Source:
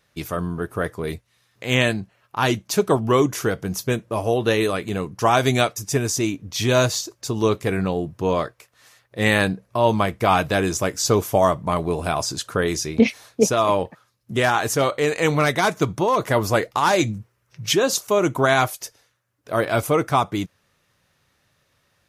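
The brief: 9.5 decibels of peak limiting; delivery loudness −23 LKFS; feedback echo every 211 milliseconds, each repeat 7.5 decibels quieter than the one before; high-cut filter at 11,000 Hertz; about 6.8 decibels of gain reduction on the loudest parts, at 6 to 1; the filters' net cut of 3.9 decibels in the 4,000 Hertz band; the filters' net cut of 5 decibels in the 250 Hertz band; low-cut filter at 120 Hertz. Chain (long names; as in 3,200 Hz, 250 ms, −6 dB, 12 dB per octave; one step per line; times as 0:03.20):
high-pass filter 120 Hz
low-pass filter 11,000 Hz
parametric band 250 Hz −6.5 dB
parametric band 4,000 Hz −5 dB
downward compressor 6 to 1, threshold −21 dBFS
brickwall limiter −18.5 dBFS
repeating echo 211 ms, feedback 42%, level −7.5 dB
level +7 dB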